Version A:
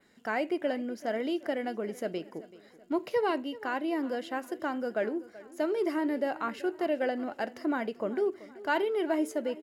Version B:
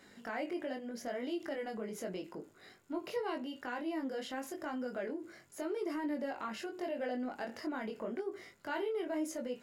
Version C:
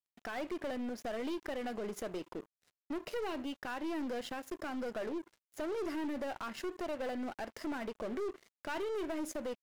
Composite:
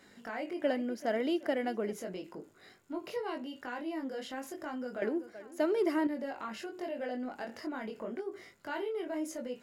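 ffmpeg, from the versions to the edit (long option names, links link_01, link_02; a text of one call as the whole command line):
ffmpeg -i take0.wav -i take1.wav -filter_complex "[0:a]asplit=2[link_01][link_02];[1:a]asplit=3[link_03][link_04][link_05];[link_03]atrim=end=0.632[link_06];[link_01]atrim=start=0.628:end=1.932[link_07];[link_04]atrim=start=1.928:end=5.022[link_08];[link_02]atrim=start=5.018:end=6.072[link_09];[link_05]atrim=start=6.068[link_10];[link_06][link_07]acrossfade=duration=0.004:curve1=hsin:curve2=hsin[link_11];[link_11][link_08]acrossfade=duration=0.004:curve1=hsin:curve2=hsin[link_12];[link_12][link_09]acrossfade=duration=0.004:curve1=hsin:curve2=hsin[link_13];[link_13][link_10]acrossfade=duration=0.004:curve1=hsin:curve2=hsin" out.wav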